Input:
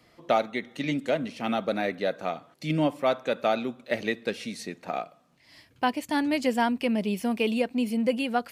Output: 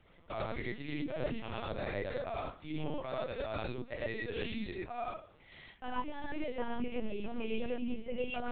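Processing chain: reverse; compressor 6:1, threshold -38 dBFS, peak gain reduction 18.5 dB; reverse; non-linear reverb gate 0.14 s rising, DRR -4.5 dB; LPC vocoder at 8 kHz pitch kept; gain -1.5 dB

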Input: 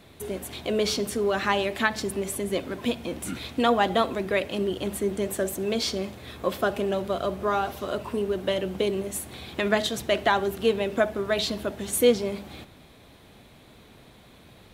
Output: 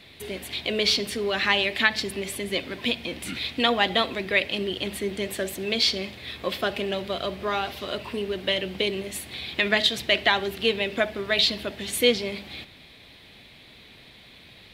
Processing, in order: band shelf 3000 Hz +11 dB; gain -2.5 dB

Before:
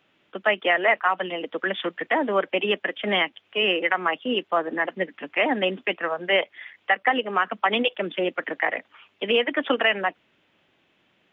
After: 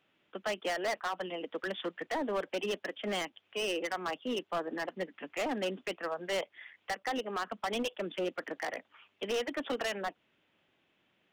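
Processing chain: overloaded stage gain 20 dB; dynamic EQ 2100 Hz, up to -5 dB, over -38 dBFS, Q 1.4; gain -8 dB

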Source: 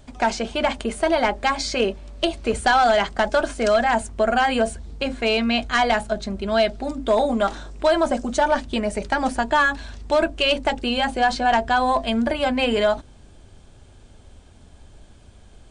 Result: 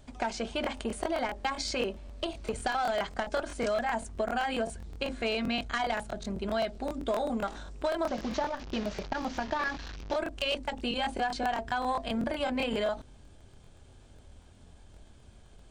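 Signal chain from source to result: 8.05–10.16 delta modulation 32 kbps, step -28 dBFS; compressor, threshold -20 dBFS, peak gain reduction 7 dB; crackling interface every 0.13 s, samples 1024, repeat, from 0.62; core saturation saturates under 390 Hz; gain -6 dB

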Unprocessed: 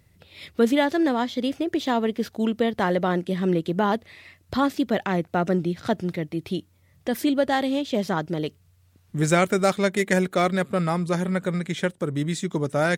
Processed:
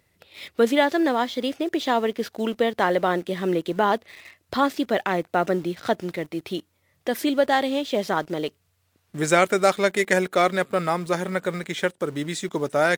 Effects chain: tone controls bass -12 dB, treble -2 dB; in parallel at -7.5 dB: bit-crush 7-bit

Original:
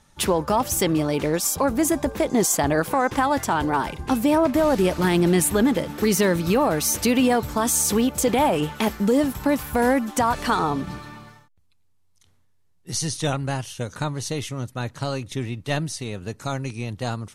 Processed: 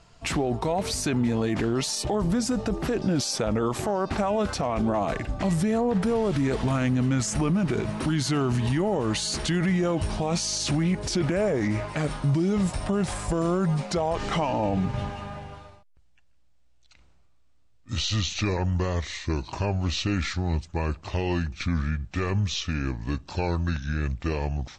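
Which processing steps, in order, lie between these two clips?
speed glide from 77% -> 63%; limiter -20.5 dBFS, peak gain reduction 10 dB; high shelf 9000 Hz -11.5 dB; gain +3.5 dB

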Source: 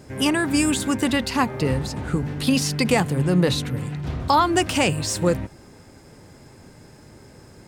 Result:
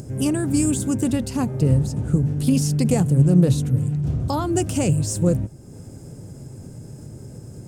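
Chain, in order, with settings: graphic EQ 125/1000/2000/4000/8000 Hz +9/-9/-12/-10/+4 dB; upward compressor, threshold -30 dBFS; Doppler distortion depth 0.15 ms

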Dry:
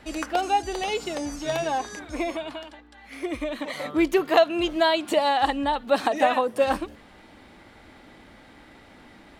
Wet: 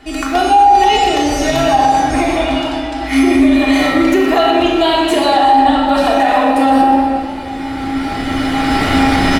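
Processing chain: recorder AGC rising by 12 dB/s; resonator 270 Hz, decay 0.51 s, harmonics odd, mix 90%; dynamic EQ 270 Hz, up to -5 dB, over -52 dBFS, Q 2.6; doubler 37 ms -11 dB; shoebox room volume 2700 m³, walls mixed, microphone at 3.3 m; maximiser +25 dB; warbling echo 0.121 s, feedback 77%, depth 134 cents, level -15 dB; gain -2 dB

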